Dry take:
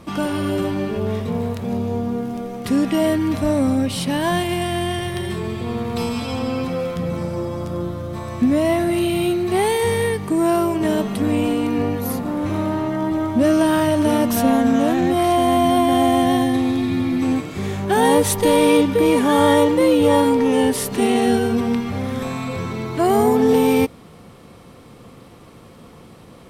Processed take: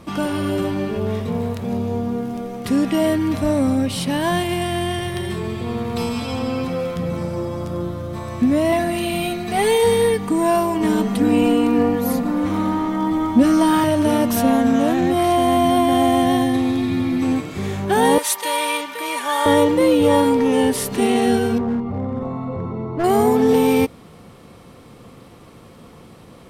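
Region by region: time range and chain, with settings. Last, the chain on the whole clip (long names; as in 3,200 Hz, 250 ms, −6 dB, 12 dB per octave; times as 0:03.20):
0:08.72–0:13.84: parametric band 11,000 Hz −4 dB 0.28 octaves + comb filter 4.1 ms, depth 81%
0:18.18–0:19.46: high-pass filter 960 Hz + comb filter 3.3 ms, depth 48%
0:21.58–0:23.04: Savitzky-Golay smoothing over 65 samples + gain into a clipping stage and back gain 17 dB
whole clip: no processing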